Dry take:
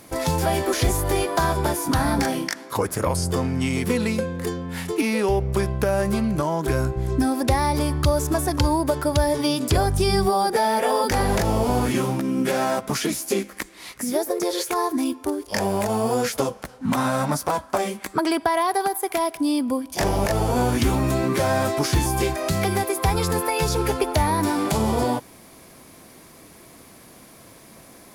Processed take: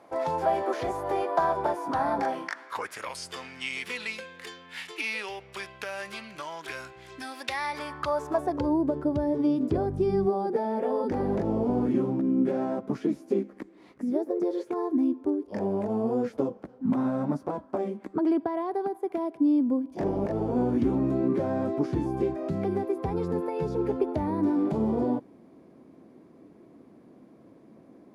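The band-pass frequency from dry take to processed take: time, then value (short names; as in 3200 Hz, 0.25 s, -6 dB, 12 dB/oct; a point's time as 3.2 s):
band-pass, Q 1.4
2.23 s 740 Hz
3.04 s 2700 Hz
7.47 s 2700 Hz
8.33 s 770 Hz
8.8 s 290 Hz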